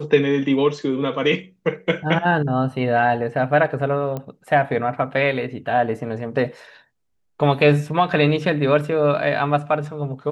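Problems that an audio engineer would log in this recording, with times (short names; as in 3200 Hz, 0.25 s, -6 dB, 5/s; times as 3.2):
4.17 pop -16 dBFS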